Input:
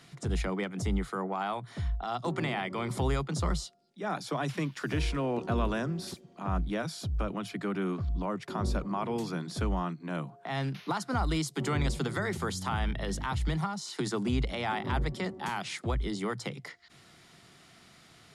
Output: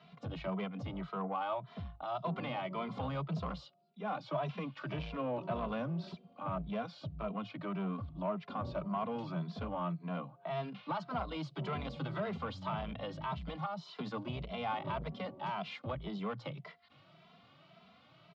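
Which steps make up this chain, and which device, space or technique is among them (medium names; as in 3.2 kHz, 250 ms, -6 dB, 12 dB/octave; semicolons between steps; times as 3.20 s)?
barber-pole flanger into a guitar amplifier (endless flanger 2.6 ms +1.8 Hz; saturation -29.5 dBFS, distortion -14 dB; cabinet simulation 100–3900 Hz, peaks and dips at 170 Hz +5 dB, 360 Hz -7 dB, 620 Hz +9 dB, 1.1 kHz +6 dB, 1.8 kHz -8 dB, 2.8 kHz +3 dB); treble shelf 8.3 kHz -5.5 dB; trim -2 dB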